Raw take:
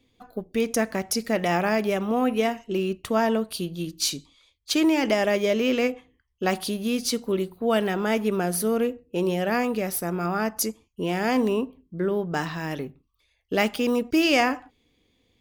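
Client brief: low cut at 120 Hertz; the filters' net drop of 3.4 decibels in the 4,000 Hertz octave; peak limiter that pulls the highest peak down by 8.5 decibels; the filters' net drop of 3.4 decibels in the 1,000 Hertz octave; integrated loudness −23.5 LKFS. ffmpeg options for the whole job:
ffmpeg -i in.wav -af "highpass=120,equalizer=frequency=1000:width_type=o:gain=-5,equalizer=frequency=4000:width_type=o:gain=-4.5,volume=5dB,alimiter=limit=-13dB:level=0:latency=1" out.wav

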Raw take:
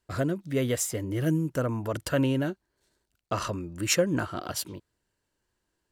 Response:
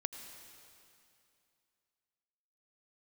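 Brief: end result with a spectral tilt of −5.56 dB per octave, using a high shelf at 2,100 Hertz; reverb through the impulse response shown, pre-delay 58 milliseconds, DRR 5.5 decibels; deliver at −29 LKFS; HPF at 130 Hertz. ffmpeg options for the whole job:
-filter_complex "[0:a]highpass=130,highshelf=frequency=2100:gain=-6.5,asplit=2[link_01][link_02];[1:a]atrim=start_sample=2205,adelay=58[link_03];[link_02][link_03]afir=irnorm=-1:irlink=0,volume=-5dB[link_04];[link_01][link_04]amix=inputs=2:normalize=0,volume=0.5dB"

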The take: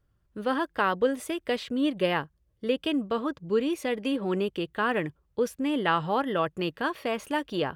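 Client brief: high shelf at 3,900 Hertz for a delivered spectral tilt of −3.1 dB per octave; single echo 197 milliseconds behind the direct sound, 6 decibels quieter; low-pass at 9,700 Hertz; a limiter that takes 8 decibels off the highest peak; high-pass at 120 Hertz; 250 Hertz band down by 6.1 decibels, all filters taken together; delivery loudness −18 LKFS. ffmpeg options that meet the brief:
ffmpeg -i in.wav -af "highpass=120,lowpass=9700,equalizer=frequency=250:width_type=o:gain=-7.5,highshelf=frequency=3900:gain=-8,alimiter=limit=-19dB:level=0:latency=1,aecho=1:1:197:0.501,volume=13.5dB" out.wav

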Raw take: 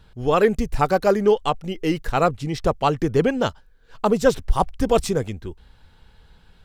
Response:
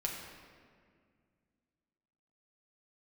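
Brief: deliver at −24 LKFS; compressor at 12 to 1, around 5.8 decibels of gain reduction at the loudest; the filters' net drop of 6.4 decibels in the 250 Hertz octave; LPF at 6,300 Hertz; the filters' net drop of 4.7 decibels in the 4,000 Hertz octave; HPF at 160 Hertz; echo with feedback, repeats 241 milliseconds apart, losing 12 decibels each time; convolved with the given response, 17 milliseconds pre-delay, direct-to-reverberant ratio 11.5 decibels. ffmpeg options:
-filter_complex "[0:a]highpass=160,lowpass=6300,equalizer=frequency=250:width_type=o:gain=-7.5,equalizer=frequency=4000:width_type=o:gain=-6,acompressor=threshold=-19dB:ratio=12,aecho=1:1:241|482|723:0.251|0.0628|0.0157,asplit=2[link_01][link_02];[1:a]atrim=start_sample=2205,adelay=17[link_03];[link_02][link_03]afir=irnorm=-1:irlink=0,volume=-14dB[link_04];[link_01][link_04]amix=inputs=2:normalize=0,volume=3dB"

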